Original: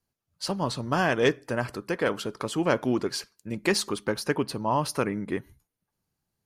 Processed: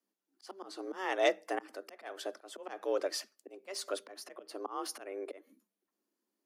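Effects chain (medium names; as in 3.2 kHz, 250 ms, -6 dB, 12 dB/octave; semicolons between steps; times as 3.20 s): slow attack 288 ms; frequency shift +190 Hz; trim -5.5 dB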